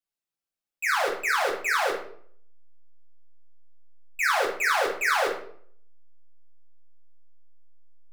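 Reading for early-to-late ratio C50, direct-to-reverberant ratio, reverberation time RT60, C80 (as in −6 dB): 5.5 dB, −4.0 dB, 0.60 s, 9.5 dB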